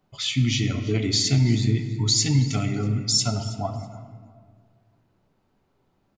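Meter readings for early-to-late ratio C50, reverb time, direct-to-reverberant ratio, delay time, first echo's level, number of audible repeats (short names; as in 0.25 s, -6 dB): 8.0 dB, 1.9 s, 6.0 dB, 0.324 s, -19.0 dB, 2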